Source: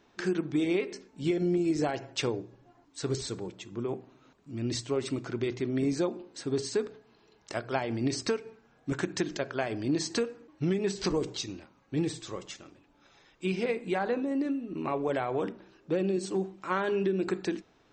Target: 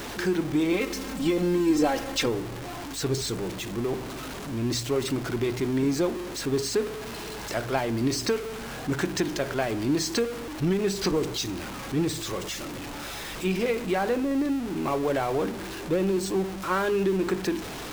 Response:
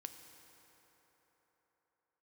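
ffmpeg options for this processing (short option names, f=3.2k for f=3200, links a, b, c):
-filter_complex "[0:a]aeval=exprs='val(0)+0.5*0.0224*sgn(val(0))':c=same,aeval=exprs='val(0)+0.00316*(sin(2*PI*50*n/s)+sin(2*PI*2*50*n/s)/2+sin(2*PI*3*50*n/s)/3+sin(2*PI*4*50*n/s)/4+sin(2*PI*5*50*n/s)/5)':c=same,asettb=1/sr,asplit=3[a][b][c];[a]atrim=end=0.724[d];[b]atrim=start=0.72:end=2.26,asetpts=PTS-STARTPTS,afade=t=in:d=0.004:c=qsin,afade=t=out:st=1.536:d=0.004:c=qsin,aecho=1:1:3.8:0.77,atrim=end_sample=67914[e];[c]atrim=start=2.256[f];[d][e]acrossfade=d=0.004:c1=hsin:c2=qsin[g];[g][f]acrossfade=d=0.004:c1=qsin:c2=hsin,volume=2dB"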